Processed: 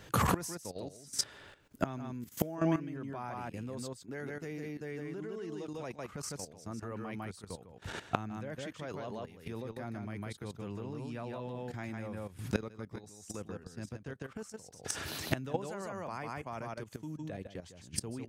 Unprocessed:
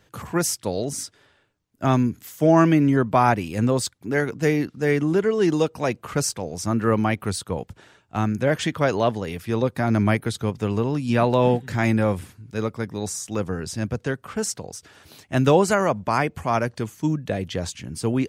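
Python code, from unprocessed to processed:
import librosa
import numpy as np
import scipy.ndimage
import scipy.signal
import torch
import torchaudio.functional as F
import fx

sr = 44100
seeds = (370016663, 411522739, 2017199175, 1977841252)

y = x + 10.0 ** (-3.5 / 20.0) * np.pad(x, (int(153 * sr / 1000.0), 0))[:len(x)]
y = fx.gate_flip(y, sr, shuts_db=-21.0, range_db=-26)
y = fx.level_steps(y, sr, step_db=13)
y = y * librosa.db_to_amplitude(11.5)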